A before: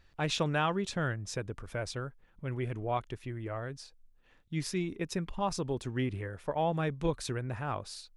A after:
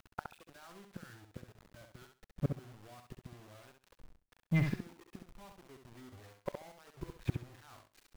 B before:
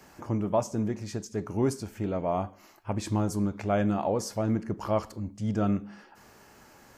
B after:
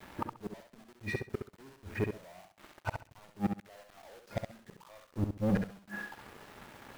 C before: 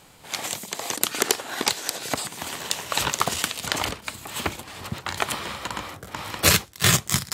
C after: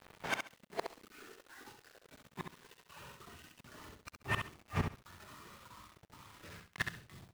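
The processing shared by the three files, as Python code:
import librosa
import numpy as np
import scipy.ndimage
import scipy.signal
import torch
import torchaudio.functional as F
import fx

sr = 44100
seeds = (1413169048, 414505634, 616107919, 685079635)

p1 = scipy.signal.sosfilt(scipy.signal.butter(4, 2400.0, 'lowpass', fs=sr, output='sos'), x)
p2 = np.clip(10.0 ** (19.0 / 20.0) * p1, -1.0, 1.0) / 10.0 ** (19.0 / 20.0)
p3 = p1 + (p2 * librosa.db_to_amplitude(-4.0))
p4 = fx.leveller(p3, sr, passes=3)
p5 = 10.0 ** (-21.0 / 20.0) * np.tanh(p4 / 10.0 ** (-21.0 / 20.0))
p6 = fx.noise_reduce_blind(p5, sr, reduce_db=11)
p7 = fx.gate_flip(p6, sr, shuts_db=-25.0, range_db=-35)
p8 = fx.quant_dither(p7, sr, seeds[0], bits=10, dither='none')
p9 = p8 + fx.echo_feedback(p8, sr, ms=67, feedback_pct=20, wet_db=-6.0, dry=0)
y = p9 * librosa.db_to_amplitude(3.5)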